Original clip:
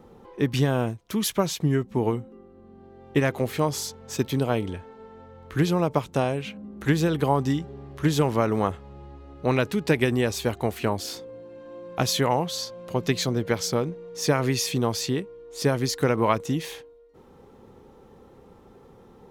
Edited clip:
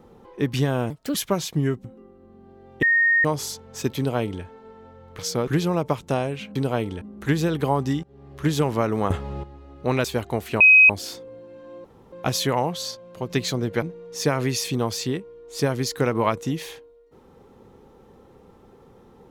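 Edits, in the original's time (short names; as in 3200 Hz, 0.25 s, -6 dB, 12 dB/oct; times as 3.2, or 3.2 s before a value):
0.9–1.22 speed 131%
1.92–2.19 cut
3.17–3.59 bleep 1850 Hz -15 dBFS
4.32–4.78 copy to 6.61
7.63–7.99 fade in, from -23.5 dB
8.7–9.03 gain +12 dB
9.64–10.35 cut
10.91 add tone 2530 Hz -8.5 dBFS 0.29 s
11.86 insert room tone 0.28 s
12.69–13.04 gain -4 dB
13.56–13.85 move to 5.53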